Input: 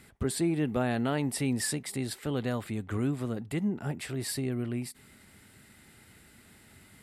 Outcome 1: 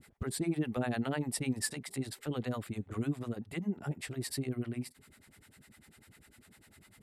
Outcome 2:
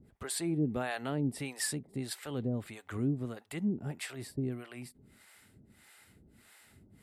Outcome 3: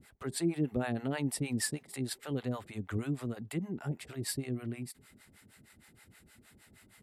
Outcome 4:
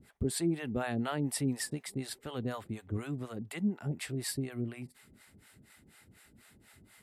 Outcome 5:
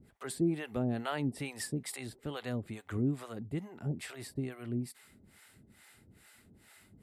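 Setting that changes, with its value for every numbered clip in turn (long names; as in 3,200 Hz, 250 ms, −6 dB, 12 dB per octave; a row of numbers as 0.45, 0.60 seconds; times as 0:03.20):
two-band tremolo in antiphase, speed: 10, 1.6, 6.4, 4.1, 2.3 Hertz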